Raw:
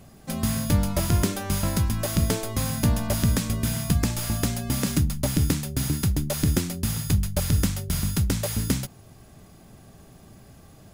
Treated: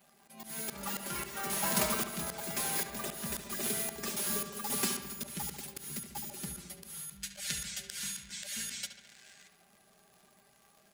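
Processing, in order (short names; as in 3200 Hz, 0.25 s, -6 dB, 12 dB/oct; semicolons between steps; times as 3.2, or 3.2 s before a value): per-bin expansion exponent 1.5; HPF 790 Hz 6 dB/oct; echoes that change speed 0.187 s, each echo +6 st, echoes 3; comb 5 ms, depth 98%; auto swell 0.565 s; crackle 180/s -54 dBFS; in parallel at -5 dB: wrapped overs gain 33 dB; on the sum: spectral gain 7.22–9.48, 1400–8900 Hz +12 dB; on a send: darkening echo 71 ms, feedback 70%, low-pass 4400 Hz, level -9 dB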